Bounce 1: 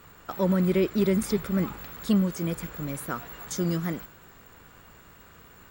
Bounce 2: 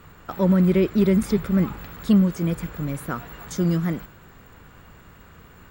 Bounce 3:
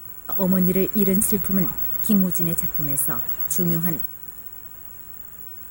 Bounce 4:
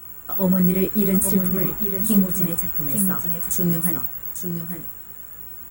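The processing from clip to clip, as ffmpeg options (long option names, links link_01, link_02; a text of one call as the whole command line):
ffmpeg -i in.wav -af "bass=frequency=250:gain=5,treble=frequency=4000:gain=-5,volume=2.5dB" out.wav
ffmpeg -i in.wav -af "aexciter=amount=13.6:drive=5:freq=7500,volume=-2.5dB" out.wav
ffmpeg -i in.wav -af "aecho=1:1:846:0.422,flanger=delay=15.5:depth=7.4:speed=0.77,volume=3dB" out.wav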